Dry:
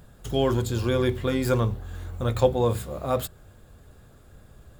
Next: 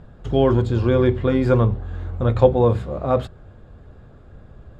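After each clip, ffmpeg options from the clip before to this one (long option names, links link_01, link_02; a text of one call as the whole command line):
ffmpeg -i in.wav -af "lowpass=4300,highshelf=frequency=2000:gain=-11,volume=7dB" out.wav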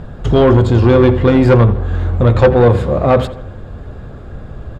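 ffmpeg -i in.wav -filter_complex "[0:a]asplit=2[link_01][link_02];[link_02]acompressor=threshold=-25dB:ratio=6,volume=-2dB[link_03];[link_01][link_03]amix=inputs=2:normalize=0,asoftclip=type=tanh:threshold=-12dB,asplit=2[link_04][link_05];[link_05]adelay=83,lowpass=frequency=2700:poles=1,volume=-14dB,asplit=2[link_06][link_07];[link_07]adelay=83,lowpass=frequency=2700:poles=1,volume=0.53,asplit=2[link_08][link_09];[link_09]adelay=83,lowpass=frequency=2700:poles=1,volume=0.53,asplit=2[link_10][link_11];[link_11]adelay=83,lowpass=frequency=2700:poles=1,volume=0.53,asplit=2[link_12][link_13];[link_13]adelay=83,lowpass=frequency=2700:poles=1,volume=0.53[link_14];[link_04][link_06][link_08][link_10][link_12][link_14]amix=inputs=6:normalize=0,volume=9dB" out.wav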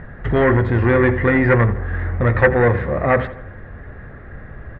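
ffmpeg -i in.wav -af "lowpass=frequency=1900:width_type=q:width=9.2,volume=-6.5dB" out.wav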